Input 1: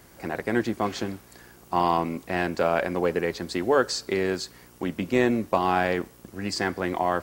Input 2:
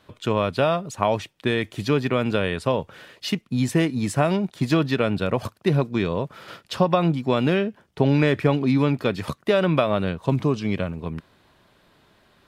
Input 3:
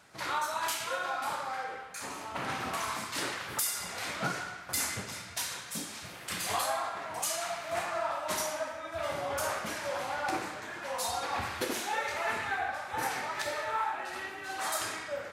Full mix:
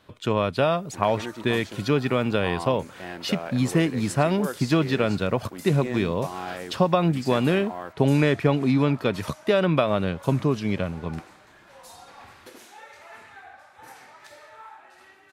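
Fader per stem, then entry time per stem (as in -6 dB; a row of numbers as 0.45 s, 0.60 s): -11.0 dB, -1.0 dB, -13.0 dB; 0.70 s, 0.00 s, 0.85 s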